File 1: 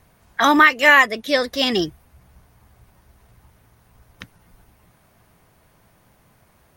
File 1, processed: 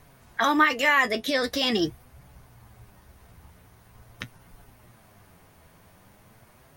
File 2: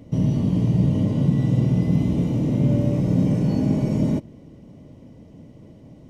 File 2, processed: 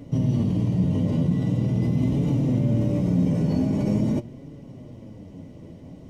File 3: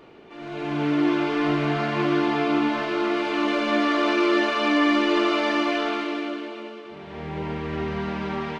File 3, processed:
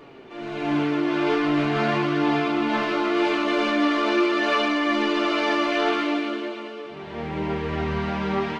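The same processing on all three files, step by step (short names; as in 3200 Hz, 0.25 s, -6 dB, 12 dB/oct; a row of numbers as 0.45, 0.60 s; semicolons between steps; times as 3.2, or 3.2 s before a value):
in parallel at 0 dB: negative-ratio compressor -25 dBFS, ratio -1; on the sum: flange 0.44 Hz, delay 6.8 ms, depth 5.5 ms, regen +48%; match loudness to -23 LUFS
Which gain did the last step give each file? -5.0, -2.0, 0.0 dB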